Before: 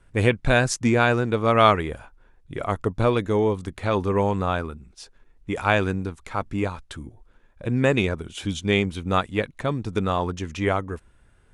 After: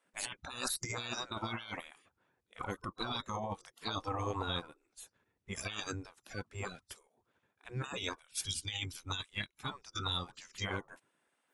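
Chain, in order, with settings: spectral noise reduction 22 dB; spectral gate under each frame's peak -20 dB weak; 8.19–10.61 bell 470 Hz -10.5 dB 1.7 oct; negative-ratio compressor -46 dBFS, ratio -1; gain +7.5 dB

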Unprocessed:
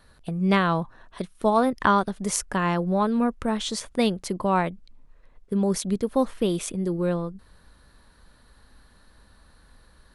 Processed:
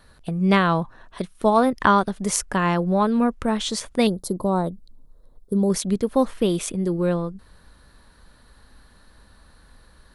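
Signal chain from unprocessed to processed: 4.07–5.7 EQ curve 490 Hz 0 dB, 1400 Hz -10 dB, 2500 Hz -30 dB, 3800 Hz -3 dB, 6200 Hz -6 dB, 11000 Hz +6 dB; gain +3 dB

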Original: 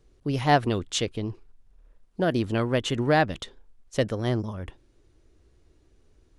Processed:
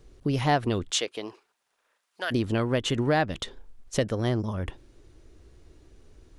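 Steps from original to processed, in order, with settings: 0.9–2.3 HPF 430 Hz -> 1500 Hz 12 dB/oct; compressor 2:1, threshold -35 dBFS, peak gain reduction 11.5 dB; gain +7 dB

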